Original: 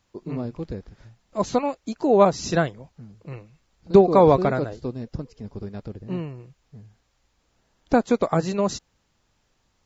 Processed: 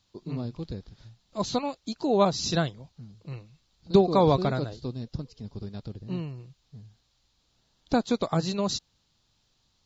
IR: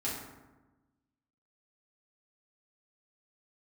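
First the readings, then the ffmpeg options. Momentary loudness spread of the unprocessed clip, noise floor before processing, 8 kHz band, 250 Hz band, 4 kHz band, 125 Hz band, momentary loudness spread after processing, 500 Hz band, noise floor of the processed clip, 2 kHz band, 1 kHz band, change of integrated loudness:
21 LU, −70 dBFS, can't be measured, −4.0 dB, +4.5 dB, −2.0 dB, 19 LU, −7.0 dB, −71 dBFS, −6.0 dB, −5.5 dB, −6.0 dB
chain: -af "equalizer=frequency=125:width_type=o:width=1:gain=4,equalizer=frequency=500:width_type=o:width=1:gain=-3,equalizer=frequency=2000:width_type=o:width=1:gain=-5,equalizer=frequency=4000:width_type=o:width=1:gain=12,volume=-4.5dB"

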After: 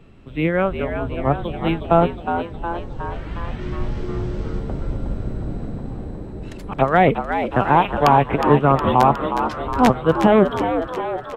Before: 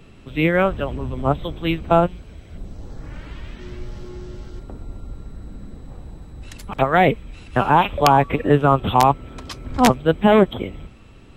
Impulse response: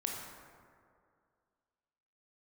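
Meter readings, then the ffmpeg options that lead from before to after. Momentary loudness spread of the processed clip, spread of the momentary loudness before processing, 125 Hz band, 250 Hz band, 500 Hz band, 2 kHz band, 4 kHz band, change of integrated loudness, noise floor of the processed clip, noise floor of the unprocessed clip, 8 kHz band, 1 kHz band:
15 LU, 22 LU, +1.0 dB, +1.0 dB, +1.0 dB, −0.5 dB, −4.0 dB, −1.0 dB, −34 dBFS, −45 dBFS, can't be measured, +1.0 dB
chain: -filter_complex "[0:a]highshelf=frequency=3400:gain=-11,dynaudnorm=framelen=350:gausssize=7:maxgain=9.5dB,asplit=2[link_01][link_02];[link_02]asplit=8[link_03][link_04][link_05][link_06][link_07][link_08][link_09][link_10];[link_03]adelay=363,afreqshift=86,volume=-8dB[link_11];[link_04]adelay=726,afreqshift=172,volume=-12.3dB[link_12];[link_05]adelay=1089,afreqshift=258,volume=-16.6dB[link_13];[link_06]adelay=1452,afreqshift=344,volume=-20.9dB[link_14];[link_07]adelay=1815,afreqshift=430,volume=-25.2dB[link_15];[link_08]adelay=2178,afreqshift=516,volume=-29.5dB[link_16];[link_09]adelay=2541,afreqshift=602,volume=-33.8dB[link_17];[link_10]adelay=2904,afreqshift=688,volume=-38.1dB[link_18];[link_11][link_12][link_13][link_14][link_15][link_16][link_17][link_18]amix=inputs=8:normalize=0[link_19];[link_01][link_19]amix=inputs=2:normalize=0,volume=-1.5dB"

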